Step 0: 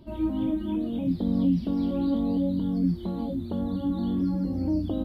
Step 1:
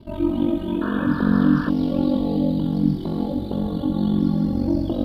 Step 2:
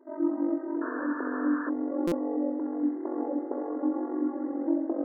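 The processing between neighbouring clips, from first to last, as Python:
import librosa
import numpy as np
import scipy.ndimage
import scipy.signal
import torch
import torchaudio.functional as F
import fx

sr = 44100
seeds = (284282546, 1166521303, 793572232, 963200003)

y1 = x * np.sin(2.0 * np.pi * 23.0 * np.arange(len(x)) / sr)
y1 = fx.echo_thinned(y1, sr, ms=68, feedback_pct=83, hz=290.0, wet_db=-7.0)
y1 = fx.spec_paint(y1, sr, seeds[0], shape='noise', start_s=0.81, length_s=0.89, low_hz=890.0, high_hz=1800.0, level_db=-41.0)
y1 = y1 * librosa.db_to_amplitude(8.0)
y2 = fx.brickwall_bandpass(y1, sr, low_hz=260.0, high_hz=2100.0)
y2 = fx.rider(y2, sr, range_db=10, speed_s=2.0)
y2 = fx.buffer_glitch(y2, sr, at_s=(2.07,), block=256, repeats=7)
y2 = y2 * librosa.db_to_amplitude(-4.5)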